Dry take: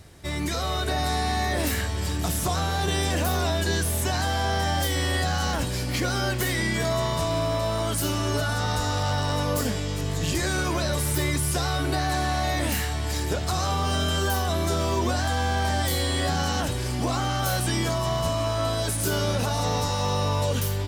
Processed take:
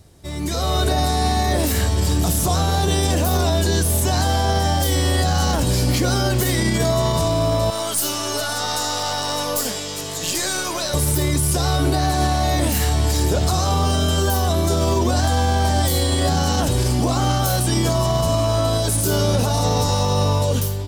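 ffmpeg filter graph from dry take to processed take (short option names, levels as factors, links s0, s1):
-filter_complex "[0:a]asettb=1/sr,asplit=3[s0][s1][s2];[s0]atrim=end=7.704[s3];[s1]atrim=start=7.7:end=10.94,asetpts=PTS-STARTPTS,afade=t=in:d=0.004:c=qsin,afade=t=out:st=3.236:d=0.004:c=qsin,highpass=f=1100:p=1,aeval=exprs='(tanh(11.2*val(0)+0.4)-tanh(0.4))/11.2':c=same[s4];[s2]atrim=start=10.936[s5];[s3][s4]acrossfade=d=0.004:c1=hsin:c2=qsin[s6];[s6][s5]acrossfade=d=0.004:c1=qsin:c2=hsin,equalizer=f=1900:t=o:w=1.6:g=-8,dynaudnorm=f=140:g=9:m=4.22,alimiter=limit=0.316:level=0:latency=1:release=53"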